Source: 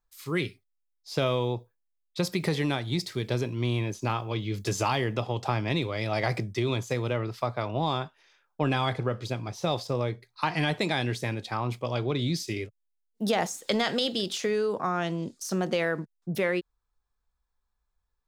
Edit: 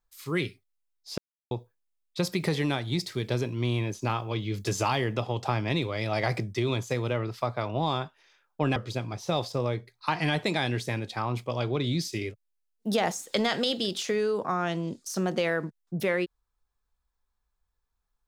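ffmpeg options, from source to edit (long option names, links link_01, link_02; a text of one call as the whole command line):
ffmpeg -i in.wav -filter_complex "[0:a]asplit=4[link_01][link_02][link_03][link_04];[link_01]atrim=end=1.18,asetpts=PTS-STARTPTS,afade=type=out:start_time=1.176:duration=0.004:curve=hsin[link_05];[link_02]atrim=start=1.18:end=1.51,asetpts=PTS-STARTPTS,volume=0[link_06];[link_03]atrim=start=1.51:end=8.762,asetpts=PTS-STARTPTS,afade=type=in:duration=0.004:curve=hsin[link_07];[link_04]atrim=start=9.108[link_08];[link_05][link_06][link_07]concat=n=3:v=0:a=1[link_09];[link_09][link_08]acrossfade=duration=0.004:curve1=hsin:curve2=hsin" out.wav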